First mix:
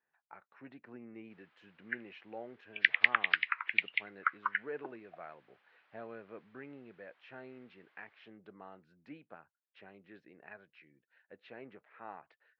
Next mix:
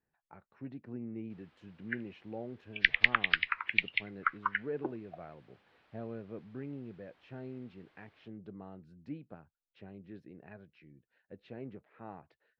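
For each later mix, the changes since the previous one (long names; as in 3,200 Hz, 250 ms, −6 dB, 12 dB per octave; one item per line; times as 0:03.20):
speech −6.0 dB
master: remove resonant band-pass 1,700 Hz, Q 0.82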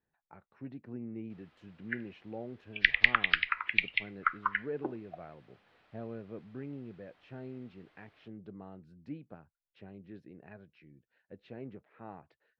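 reverb: on, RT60 0.40 s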